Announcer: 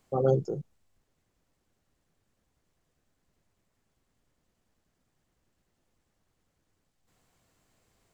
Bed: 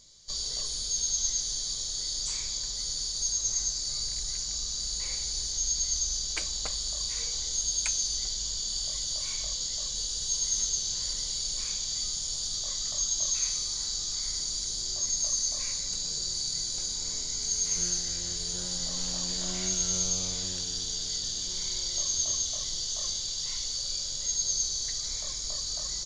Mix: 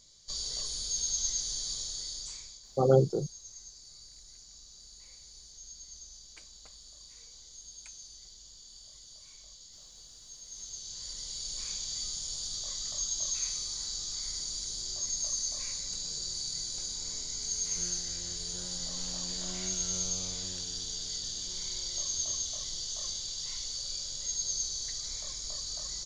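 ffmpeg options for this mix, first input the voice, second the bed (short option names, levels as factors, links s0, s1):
-filter_complex "[0:a]adelay=2650,volume=1.26[s0];[1:a]volume=3.98,afade=t=out:st=1.76:d=0.85:silence=0.149624,afade=t=in:st=10.45:d=1.29:silence=0.177828[s1];[s0][s1]amix=inputs=2:normalize=0"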